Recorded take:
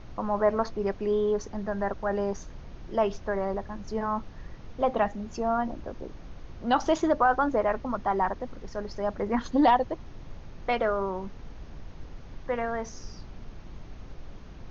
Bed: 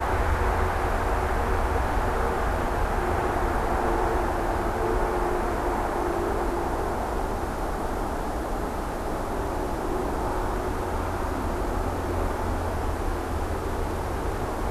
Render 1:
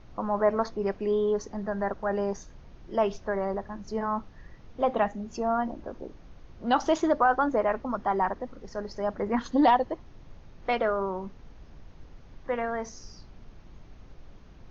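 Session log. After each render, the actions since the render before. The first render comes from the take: noise print and reduce 6 dB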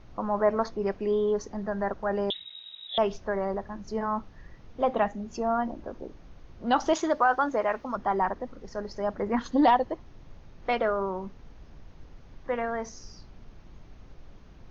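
2.30–2.98 s: frequency inversion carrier 3.8 kHz; 6.93–7.96 s: tilt EQ +2 dB/octave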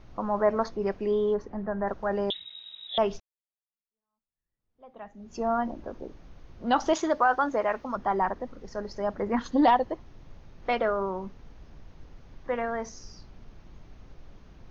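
1.34–1.86 s: low-pass 2.5 kHz -> 1.7 kHz; 3.20–5.42 s: fade in exponential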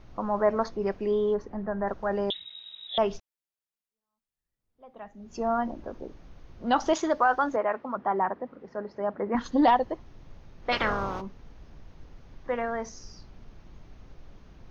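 7.56–9.35 s: band-pass 170–2100 Hz; 10.71–11.20 s: spectral peaks clipped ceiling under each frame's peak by 26 dB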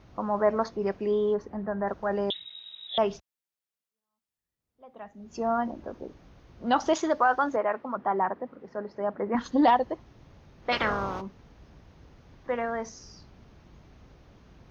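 high-pass 54 Hz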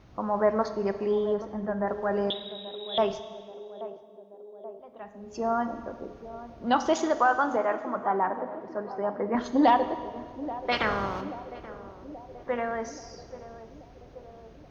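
band-passed feedback delay 831 ms, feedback 71%, band-pass 430 Hz, level -13 dB; Schroeder reverb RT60 1.7 s, combs from 29 ms, DRR 10.5 dB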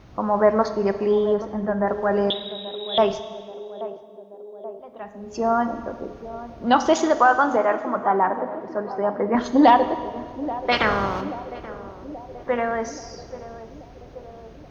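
trim +6.5 dB

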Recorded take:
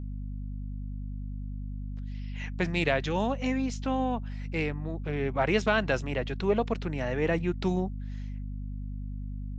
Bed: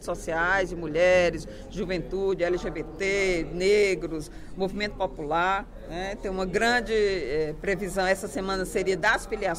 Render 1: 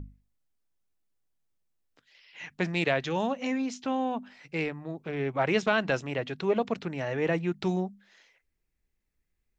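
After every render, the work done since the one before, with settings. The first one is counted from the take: hum notches 50/100/150/200/250 Hz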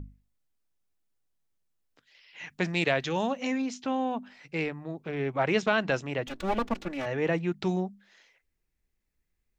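2.47–3.62 s: treble shelf 4.2 kHz +5 dB; 6.27–7.06 s: comb filter that takes the minimum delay 3.5 ms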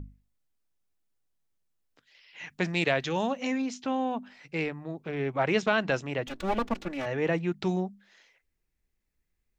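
no audible change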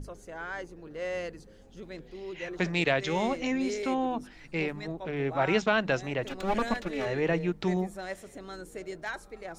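add bed -14 dB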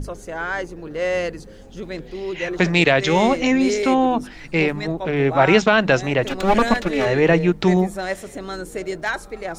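trim +12 dB; peak limiter -2 dBFS, peak gain reduction 3 dB

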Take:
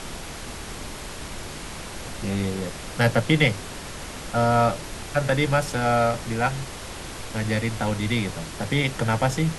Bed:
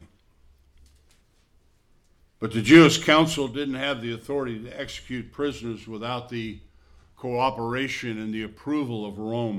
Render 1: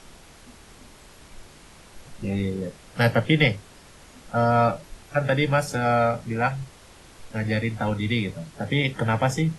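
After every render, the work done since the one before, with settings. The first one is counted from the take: noise print and reduce 13 dB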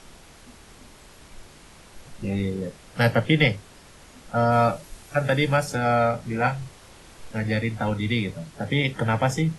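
4.52–5.57 s: treble shelf 6.9 kHz +8 dB; 6.21–7.40 s: doubling 32 ms -6.5 dB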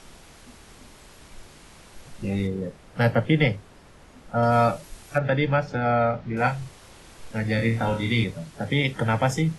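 2.47–4.43 s: treble shelf 2.5 kHz -9 dB; 5.18–6.37 s: distance through air 240 m; 7.56–8.24 s: flutter echo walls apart 4.5 m, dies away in 0.35 s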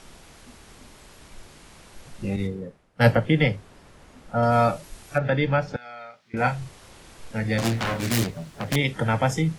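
2.36–3.17 s: three bands expanded up and down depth 100%; 5.76–6.34 s: differentiator; 7.58–8.76 s: self-modulated delay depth 0.89 ms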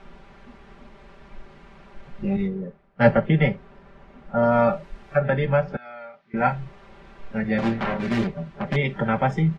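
low-pass 2.1 kHz 12 dB/octave; comb 5.1 ms, depth 79%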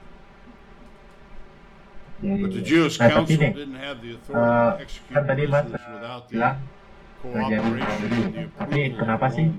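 add bed -6 dB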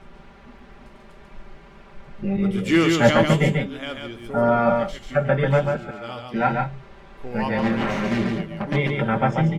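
delay 141 ms -4 dB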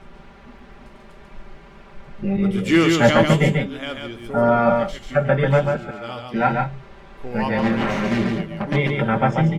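trim +2 dB; peak limiter -2 dBFS, peak gain reduction 2 dB

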